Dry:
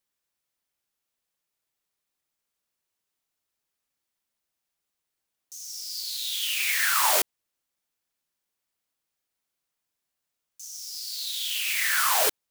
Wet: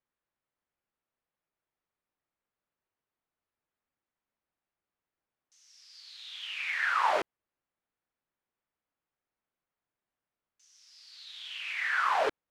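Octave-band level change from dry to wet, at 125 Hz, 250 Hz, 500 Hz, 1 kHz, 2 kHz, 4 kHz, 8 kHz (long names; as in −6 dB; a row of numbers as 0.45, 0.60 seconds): can't be measured, 0.0 dB, 0.0 dB, −0.5 dB, −3.5 dB, −12.5 dB, −26.0 dB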